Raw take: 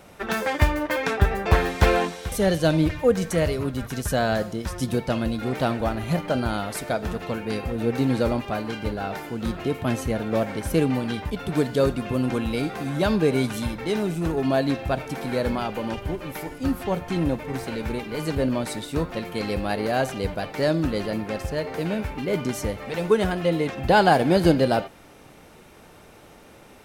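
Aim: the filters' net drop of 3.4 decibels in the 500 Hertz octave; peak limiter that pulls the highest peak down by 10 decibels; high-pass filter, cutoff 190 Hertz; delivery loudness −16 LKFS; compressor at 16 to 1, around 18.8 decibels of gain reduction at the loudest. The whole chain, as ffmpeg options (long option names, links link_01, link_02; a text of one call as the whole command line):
ffmpeg -i in.wav -af "highpass=190,equalizer=frequency=500:width_type=o:gain=-4,acompressor=threshold=-33dB:ratio=16,volume=24.5dB,alimiter=limit=-6dB:level=0:latency=1" out.wav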